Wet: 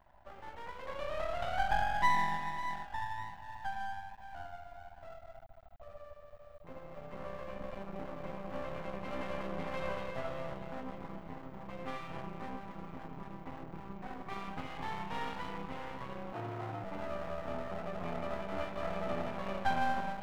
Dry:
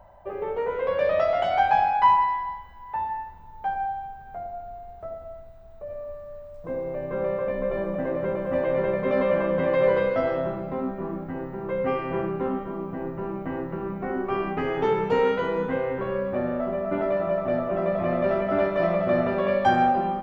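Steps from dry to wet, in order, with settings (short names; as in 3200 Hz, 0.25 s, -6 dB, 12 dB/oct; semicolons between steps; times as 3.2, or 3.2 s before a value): fixed phaser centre 1600 Hz, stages 6; diffused feedback echo 0.568 s, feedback 41%, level -10 dB; half-wave rectifier; 16.33–16.84 frequency shift +110 Hz; gain -6 dB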